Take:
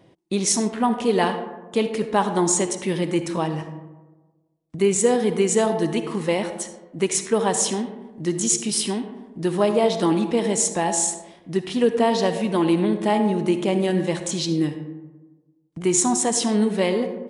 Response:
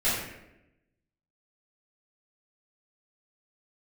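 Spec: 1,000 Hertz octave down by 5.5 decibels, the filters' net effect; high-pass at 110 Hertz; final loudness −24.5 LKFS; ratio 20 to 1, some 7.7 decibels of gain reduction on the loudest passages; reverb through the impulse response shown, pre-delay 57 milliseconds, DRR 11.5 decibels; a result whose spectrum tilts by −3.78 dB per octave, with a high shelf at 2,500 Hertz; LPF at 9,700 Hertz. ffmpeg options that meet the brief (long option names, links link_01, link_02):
-filter_complex "[0:a]highpass=110,lowpass=9700,equalizer=frequency=1000:width_type=o:gain=-8,highshelf=frequency=2500:gain=3.5,acompressor=threshold=-22dB:ratio=20,asplit=2[link_01][link_02];[1:a]atrim=start_sample=2205,adelay=57[link_03];[link_02][link_03]afir=irnorm=-1:irlink=0,volume=-24dB[link_04];[link_01][link_04]amix=inputs=2:normalize=0,volume=2.5dB"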